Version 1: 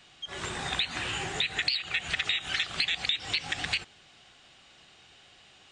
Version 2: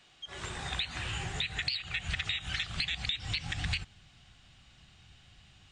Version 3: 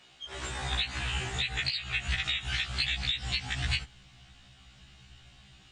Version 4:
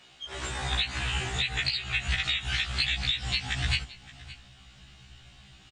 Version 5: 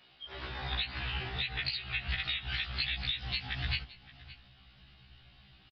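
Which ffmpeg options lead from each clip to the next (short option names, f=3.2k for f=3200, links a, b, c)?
-af "asubboost=boost=11.5:cutoff=130,volume=-5dB"
-af "afftfilt=real='re*1.73*eq(mod(b,3),0)':imag='im*1.73*eq(mod(b,3),0)':win_size=2048:overlap=0.75,volume=5.5dB"
-af "aecho=1:1:570:0.119,volume=2.5dB"
-af "aresample=11025,aresample=44100,volume=-6dB"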